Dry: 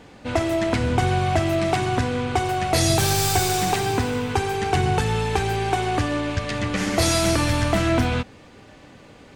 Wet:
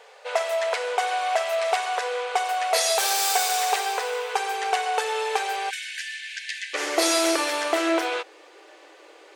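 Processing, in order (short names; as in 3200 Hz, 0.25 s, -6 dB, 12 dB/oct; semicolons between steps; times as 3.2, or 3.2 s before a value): brick-wall FIR high-pass 410 Hz, from 5.69 s 1500 Hz, from 6.73 s 310 Hz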